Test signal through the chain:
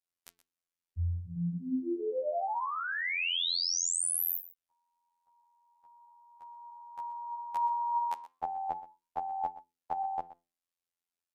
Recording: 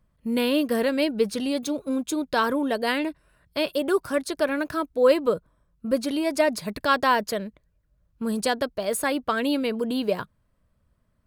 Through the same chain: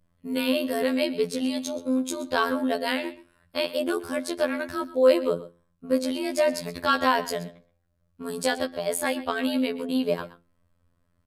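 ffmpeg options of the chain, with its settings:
ffmpeg -i in.wav -af "bandreject=frequency=60:width_type=h:width=6,bandreject=frequency=120:width_type=h:width=6,bandreject=frequency=180:width_type=h:width=6,bandreject=frequency=240:width_type=h:width=6,bandreject=frequency=300:width_type=h:width=6,bandreject=frequency=360:width_type=h:width=6,bandreject=frequency=420:width_type=h:width=6,adynamicequalizer=threshold=0.00891:dfrequency=1300:dqfactor=1.5:tfrequency=1300:tqfactor=1.5:attack=5:release=100:ratio=0.375:range=3:mode=cutabove:tftype=bell,flanger=delay=3.3:depth=8.1:regen=88:speed=0.21:shape=triangular,afftfilt=real='hypot(re,im)*cos(PI*b)':imag='0':win_size=2048:overlap=0.75,aecho=1:1:124:0.15,aresample=32000,aresample=44100,volume=7.5dB" out.wav

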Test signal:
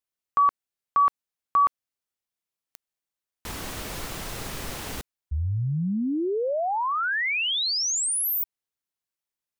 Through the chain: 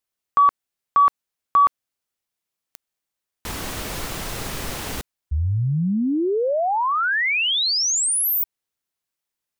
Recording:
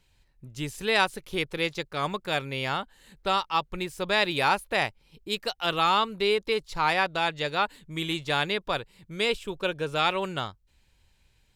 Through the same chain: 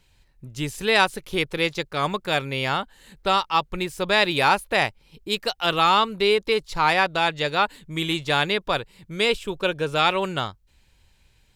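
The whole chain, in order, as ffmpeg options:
ffmpeg -i in.wav -af "acontrast=23" out.wav

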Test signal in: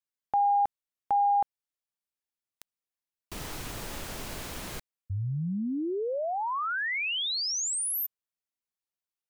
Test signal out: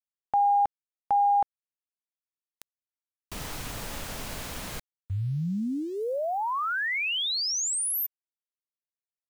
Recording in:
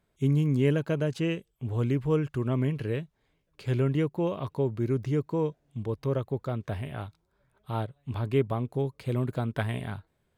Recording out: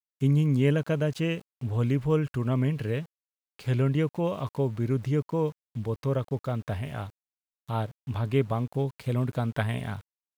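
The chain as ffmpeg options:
ffmpeg -i in.wav -af "equalizer=frequency=360:width_type=o:width=0.35:gain=-6,aeval=exprs='val(0)*gte(abs(val(0)),0.00335)':channel_layout=same,volume=2dB" out.wav

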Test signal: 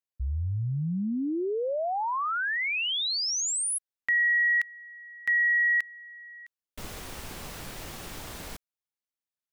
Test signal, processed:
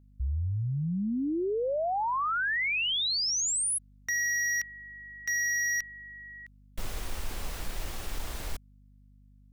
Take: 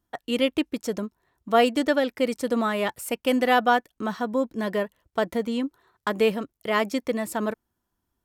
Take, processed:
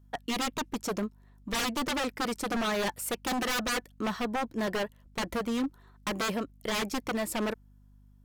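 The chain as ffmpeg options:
ffmpeg -i in.wav -af "asubboost=boost=5:cutoff=58,aeval=exprs='0.0596*(abs(mod(val(0)/0.0596+3,4)-2)-1)':channel_layout=same,aeval=exprs='val(0)+0.00158*(sin(2*PI*50*n/s)+sin(2*PI*2*50*n/s)/2+sin(2*PI*3*50*n/s)/3+sin(2*PI*4*50*n/s)/4+sin(2*PI*5*50*n/s)/5)':channel_layout=same" out.wav

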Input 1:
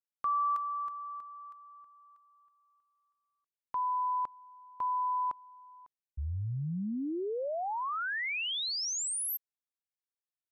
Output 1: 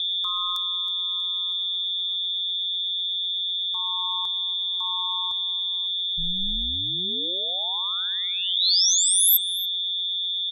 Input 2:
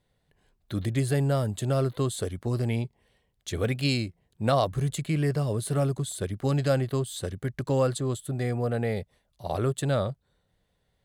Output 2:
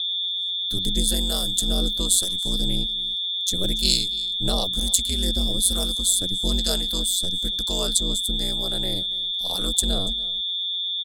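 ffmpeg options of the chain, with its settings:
ffmpeg -i in.wav -filter_complex "[0:a]acrossover=split=600[link_01][link_02];[link_01]aeval=exprs='val(0)*(1-0.5/2+0.5/2*cos(2*PI*1.1*n/s))':channel_layout=same[link_03];[link_02]aeval=exprs='val(0)*(1-0.5/2-0.5/2*cos(2*PI*1.1*n/s))':channel_layout=same[link_04];[link_03][link_04]amix=inputs=2:normalize=0,aeval=exprs='val(0)+0.0224*sin(2*PI*3500*n/s)':channel_layout=same,aecho=1:1:285:0.1,aeval=exprs='val(0)*sin(2*PI*92*n/s)':channel_layout=same,aexciter=amount=12.6:drive=2.7:freq=3500,lowshelf=frequency=130:gain=11.5,volume=-1dB" out.wav

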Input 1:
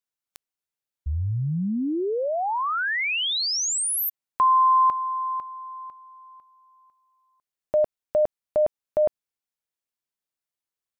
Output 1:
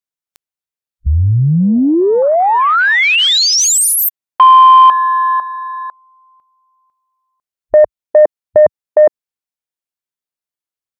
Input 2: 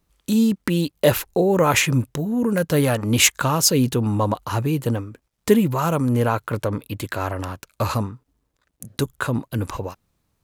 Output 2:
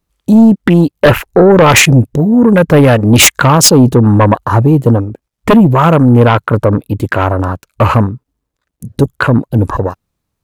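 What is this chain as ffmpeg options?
ffmpeg -i in.wav -af "afwtdn=0.0282,aeval=exprs='0.891*sin(PI/2*3.55*val(0)/0.891)':channel_layout=same" out.wav

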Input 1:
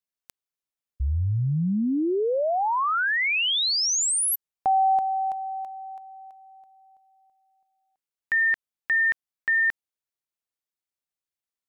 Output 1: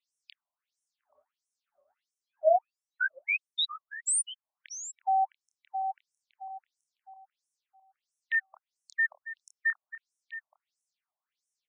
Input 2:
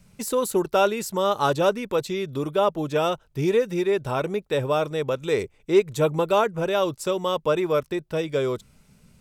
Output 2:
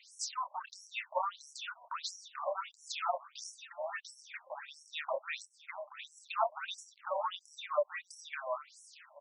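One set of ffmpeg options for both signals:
ffmpeg -i in.wav -filter_complex "[0:a]equalizer=frequency=97:width_type=o:width=1:gain=11.5,asplit=2[link_01][link_02];[link_02]alimiter=limit=-19dB:level=0:latency=1:release=429,volume=1dB[link_03];[link_01][link_03]amix=inputs=2:normalize=0,acrossover=split=480[link_04][link_05];[link_05]acompressor=threshold=-33dB:ratio=4:attack=0.7:release=284:knee=2.83:detection=peak[link_06];[link_04][link_06]amix=inputs=2:normalize=0,asplit=2[link_07][link_08];[link_08]adelay=27,volume=-6dB[link_09];[link_07][link_09]amix=inputs=2:normalize=0,asplit=2[link_10][link_11];[link_11]aecho=0:1:829:0.211[link_12];[link_10][link_12]amix=inputs=2:normalize=0,afftfilt=real='re*between(b*sr/1024,770*pow(7700/770,0.5+0.5*sin(2*PI*1.5*pts/sr))/1.41,770*pow(7700/770,0.5+0.5*sin(2*PI*1.5*pts/sr))*1.41)':imag='im*between(b*sr/1024,770*pow(7700/770,0.5+0.5*sin(2*PI*1.5*pts/sr))/1.41,770*pow(7700/770,0.5+0.5*sin(2*PI*1.5*pts/sr))*1.41)':win_size=1024:overlap=0.75,volume=4dB" out.wav

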